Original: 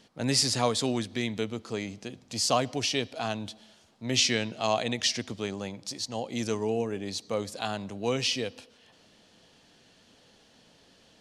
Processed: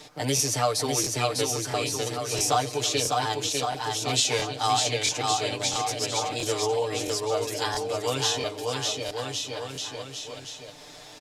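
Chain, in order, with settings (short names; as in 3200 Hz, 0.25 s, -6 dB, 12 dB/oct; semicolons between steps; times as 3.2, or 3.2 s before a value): bell 200 Hz -14.5 dB 0.42 oct; formant shift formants +3 st; comb 6.7 ms, depth 93%; bouncing-ball echo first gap 0.6 s, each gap 0.85×, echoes 5; crackling interface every 0.67 s, samples 1024, repeat, from 0.35; three-band squash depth 40%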